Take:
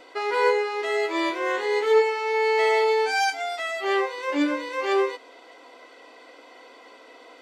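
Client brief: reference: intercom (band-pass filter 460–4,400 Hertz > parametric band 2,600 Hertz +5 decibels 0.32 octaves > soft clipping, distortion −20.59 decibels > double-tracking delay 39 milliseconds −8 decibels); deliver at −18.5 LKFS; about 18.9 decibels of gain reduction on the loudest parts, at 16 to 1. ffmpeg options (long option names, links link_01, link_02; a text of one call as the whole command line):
ffmpeg -i in.wav -filter_complex "[0:a]acompressor=threshold=-34dB:ratio=16,highpass=460,lowpass=4400,equalizer=frequency=2600:width_type=o:width=0.32:gain=5,asoftclip=threshold=-31dB,asplit=2[link_01][link_02];[link_02]adelay=39,volume=-8dB[link_03];[link_01][link_03]amix=inputs=2:normalize=0,volume=21.5dB" out.wav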